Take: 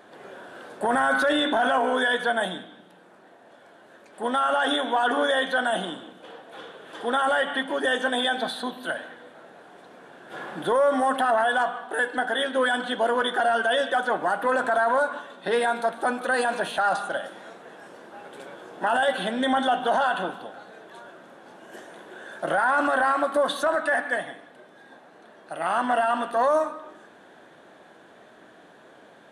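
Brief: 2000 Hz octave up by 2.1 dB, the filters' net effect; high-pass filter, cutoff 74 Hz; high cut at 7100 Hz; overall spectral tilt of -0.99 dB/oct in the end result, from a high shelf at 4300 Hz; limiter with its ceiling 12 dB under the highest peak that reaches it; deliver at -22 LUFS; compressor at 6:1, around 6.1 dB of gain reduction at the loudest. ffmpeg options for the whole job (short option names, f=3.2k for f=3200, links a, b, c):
-af "highpass=74,lowpass=7.1k,equalizer=f=2k:t=o:g=4,highshelf=f=4.3k:g=-6,acompressor=threshold=-24dB:ratio=6,volume=12.5dB,alimiter=limit=-13dB:level=0:latency=1"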